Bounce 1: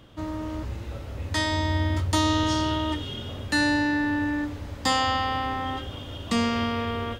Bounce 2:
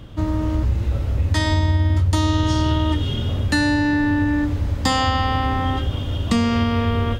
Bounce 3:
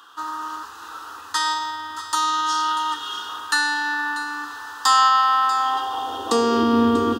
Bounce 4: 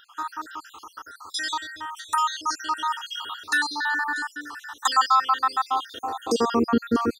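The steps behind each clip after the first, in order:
low shelf 190 Hz +12 dB; compressor, threshold -20 dBFS, peak gain reduction 8 dB; gain +5.5 dB
fixed phaser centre 590 Hz, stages 6; echo 0.64 s -14 dB; high-pass sweep 1300 Hz -> 260 Hz, 5.55–6.8; gain +5.5 dB
random spectral dropouts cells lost 63%

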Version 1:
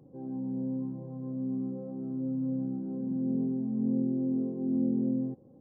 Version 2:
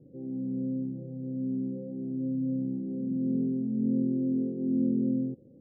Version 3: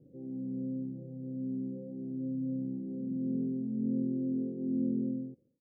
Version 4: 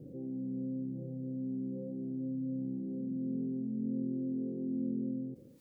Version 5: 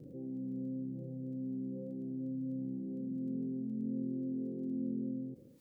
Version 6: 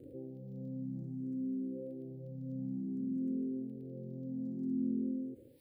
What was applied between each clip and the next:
steep low-pass 560 Hz 36 dB/oct; gain +1.5 dB
ending faded out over 0.62 s; gain -4.5 dB
fast leveller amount 50%; gain -4.5 dB
crackle 13/s -59 dBFS; gain -2 dB
endless phaser +0.56 Hz; gain +3 dB

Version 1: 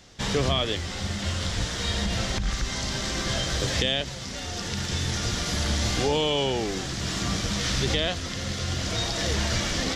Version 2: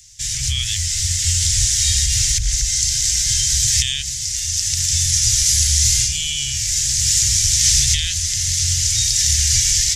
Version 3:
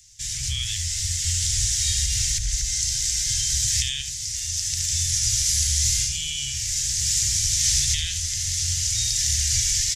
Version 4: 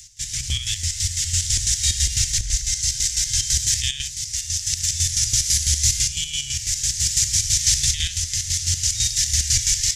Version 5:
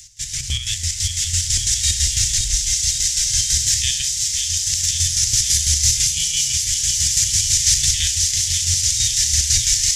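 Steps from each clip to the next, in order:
inverse Chebyshev band-stop 240–1000 Hz, stop band 50 dB; resonant high shelf 5000 Hz +12.5 dB, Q 1.5; AGC gain up to 8 dB; gain +1 dB
echo 72 ms -9.5 dB; gain -6.5 dB
reverse; upward compressor, threshold -29 dBFS; reverse; chopper 6 Hz, depth 60%, duty 45%; gain +4.5 dB
notches 60/120/180/240/300/360 Hz; on a send: thin delay 0.535 s, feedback 76%, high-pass 2500 Hz, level -5 dB; on the sum: gain +1.5 dB

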